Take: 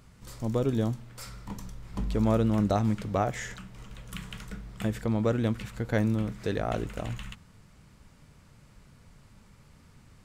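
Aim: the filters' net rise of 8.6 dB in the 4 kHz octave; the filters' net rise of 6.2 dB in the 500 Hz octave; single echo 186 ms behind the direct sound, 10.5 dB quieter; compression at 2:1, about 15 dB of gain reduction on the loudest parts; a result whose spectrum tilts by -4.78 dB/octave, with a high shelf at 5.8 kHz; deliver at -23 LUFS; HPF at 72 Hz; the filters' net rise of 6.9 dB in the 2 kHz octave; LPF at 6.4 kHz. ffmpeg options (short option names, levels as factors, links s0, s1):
-af "highpass=72,lowpass=6400,equalizer=f=500:t=o:g=7,equalizer=f=2000:t=o:g=6,equalizer=f=4000:t=o:g=7,highshelf=f=5800:g=6.5,acompressor=threshold=0.00562:ratio=2,aecho=1:1:186:0.299,volume=7.08"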